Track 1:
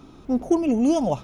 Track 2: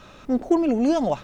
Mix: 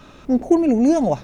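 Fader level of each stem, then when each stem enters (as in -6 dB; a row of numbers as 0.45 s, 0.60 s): -2.5 dB, 0.0 dB; 0.00 s, 0.00 s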